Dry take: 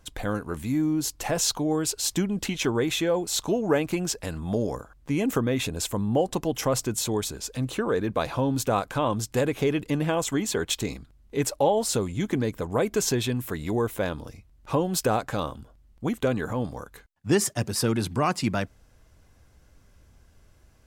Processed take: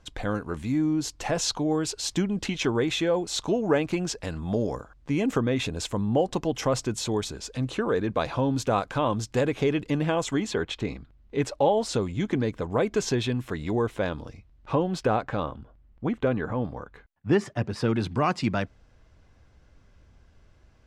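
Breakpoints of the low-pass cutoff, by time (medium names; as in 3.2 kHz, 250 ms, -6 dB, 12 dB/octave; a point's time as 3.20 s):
10.38 s 6 kHz
10.72 s 2.7 kHz
11.71 s 4.9 kHz
14.21 s 4.9 kHz
15.53 s 2.5 kHz
17.64 s 2.5 kHz
18.18 s 4.7 kHz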